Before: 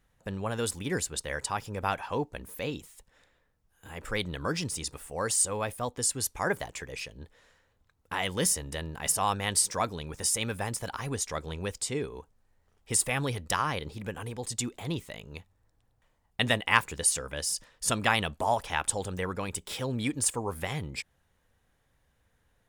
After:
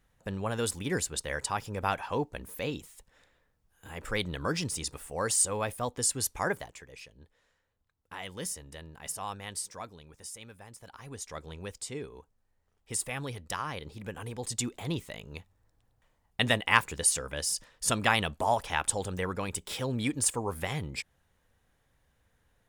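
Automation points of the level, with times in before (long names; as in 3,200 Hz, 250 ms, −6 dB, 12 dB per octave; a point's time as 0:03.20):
0:06.42 0 dB
0:06.82 −10 dB
0:09.36 −10 dB
0:10.64 −17.5 dB
0:11.38 −6.5 dB
0:13.64 −6.5 dB
0:14.49 0 dB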